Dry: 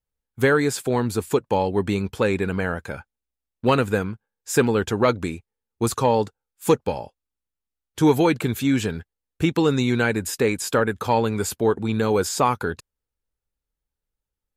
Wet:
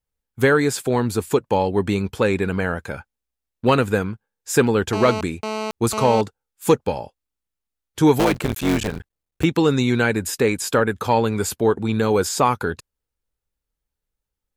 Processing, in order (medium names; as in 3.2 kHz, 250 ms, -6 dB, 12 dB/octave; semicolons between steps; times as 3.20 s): 4.93–6.21 s: mobile phone buzz -28 dBFS; 8.19–9.44 s: cycle switcher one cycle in 3, muted; trim +2 dB